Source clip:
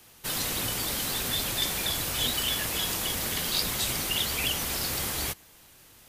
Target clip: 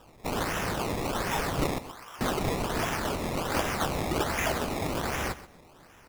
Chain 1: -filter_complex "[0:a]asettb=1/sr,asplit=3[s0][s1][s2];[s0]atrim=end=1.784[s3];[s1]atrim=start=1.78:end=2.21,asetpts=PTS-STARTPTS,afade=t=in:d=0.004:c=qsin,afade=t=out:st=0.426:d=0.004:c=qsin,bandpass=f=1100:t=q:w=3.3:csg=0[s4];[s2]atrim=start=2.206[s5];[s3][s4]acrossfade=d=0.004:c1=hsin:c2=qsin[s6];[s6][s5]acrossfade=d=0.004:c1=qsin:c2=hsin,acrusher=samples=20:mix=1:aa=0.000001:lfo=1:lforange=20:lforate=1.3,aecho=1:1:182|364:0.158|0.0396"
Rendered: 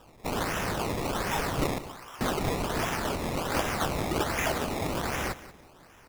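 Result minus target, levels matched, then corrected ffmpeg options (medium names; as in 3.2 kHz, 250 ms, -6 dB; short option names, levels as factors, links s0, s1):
echo 54 ms late
-filter_complex "[0:a]asettb=1/sr,asplit=3[s0][s1][s2];[s0]atrim=end=1.784[s3];[s1]atrim=start=1.78:end=2.21,asetpts=PTS-STARTPTS,afade=t=in:d=0.004:c=qsin,afade=t=out:st=0.426:d=0.004:c=qsin,bandpass=f=1100:t=q:w=3.3:csg=0[s4];[s2]atrim=start=2.206[s5];[s3][s4]acrossfade=d=0.004:c1=hsin:c2=qsin[s6];[s6][s5]acrossfade=d=0.004:c1=qsin:c2=hsin,acrusher=samples=20:mix=1:aa=0.000001:lfo=1:lforange=20:lforate=1.3,aecho=1:1:128|256:0.158|0.0396"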